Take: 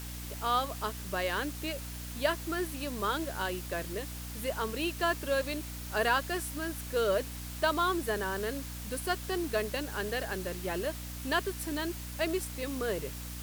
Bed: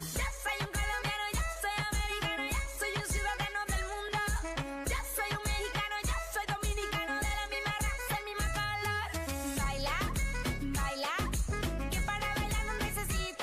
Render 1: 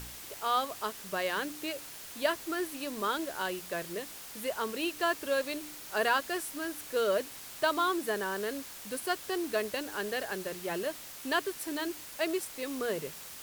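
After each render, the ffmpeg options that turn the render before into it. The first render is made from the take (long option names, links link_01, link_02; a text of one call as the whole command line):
ffmpeg -i in.wav -af "bandreject=frequency=60:width_type=h:width=4,bandreject=frequency=120:width_type=h:width=4,bandreject=frequency=180:width_type=h:width=4,bandreject=frequency=240:width_type=h:width=4,bandreject=frequency=300:width_type=h:width=4" out.wav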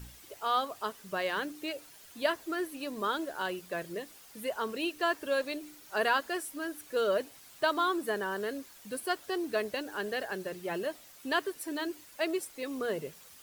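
ffmpeg -i in.wav -af "afftdn=noise_reduction=10:noise_floor=-46" out.wav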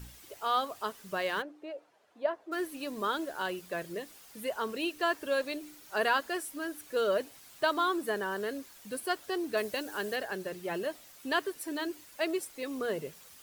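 ffmpeg -i in.wav -filter_complex "[0:a]asplit=3[link_01][link_02][link_03];[link_01]afade=type=out:start_time=1.41:duration=0.02[link_04];[link_02]bandpass=frequency=630:width_type=q:width=1.3,afade=type=in:start_time=1.41:duration=0.02,afade=type=out:start_time=2.51:duration=0.02[link_05];[link_03]afade=type=in:start_time=2.51:duration=0.02[link_06];[link_04][link_05][link_06]amix=inputs=3:normalize=0,asettb=1/sr,asplit=3[link_07][link_08][link_09];[link_07]atrim=end=9.574[link_10];[link_08]atrim=start=9.57:end=10.16,asetpts=PTS-STARTPTS,afade=type=in:duration=0.004:curve=qsin,afade=type=out:start_time=0.586:duration=0.004:curve=qsin,highshelf=frequency=5200:gain=6.5[link_11];[link_09]atrim=start=10.156[link_12];[link_10][link_11]acrossfade=duration=0.004:curve1=hsin:curve2=qsin[link_13];[link_13][link_12]acrossfade=duration=0.004:curve1=qsin:curve2=hsin" out.wav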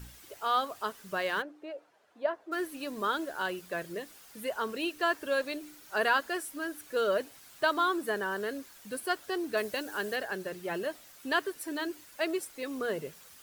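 ffmpeg -i in.wav -af "equalizer=frequency=1500:width_type=o:width=0.53:gain=3" out.wav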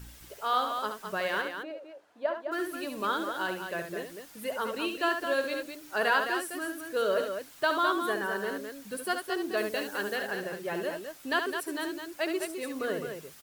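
ffmpeg -i in.wav -af "aecho=1:1:69.97|209.9:0.447|0.447" out.wav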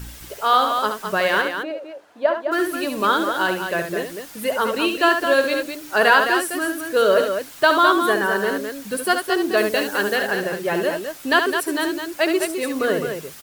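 ffmpeg -i in.wav -af "volume=11.5dB,alimiter=limit=-3dB:level=0:latency=1" out.wav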